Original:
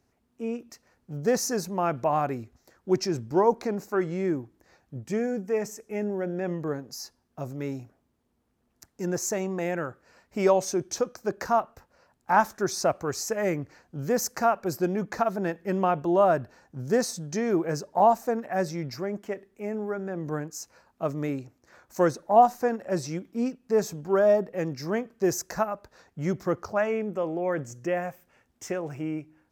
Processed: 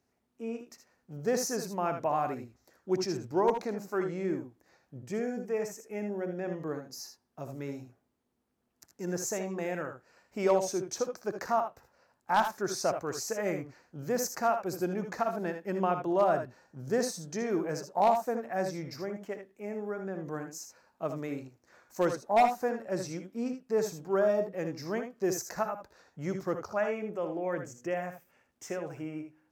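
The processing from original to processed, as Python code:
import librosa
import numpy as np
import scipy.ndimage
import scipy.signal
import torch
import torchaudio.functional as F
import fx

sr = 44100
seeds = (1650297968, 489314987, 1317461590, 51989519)

y = fx.low_shelf(x, sr, hz=100.0, db=-9.5)
y = 10.0 ** (-11.5 / 20.0) * (np.abs((y / 10.0 ** (-11.5 / 20.0) + 3.0) % 4.0 - 2.0) - 1.0)
y = fx.room_early_taps(y, sr, ms=(62, 78), db=(-12.0, -9.0))
y = y * 10.0 ** (-5.0 / 20.0)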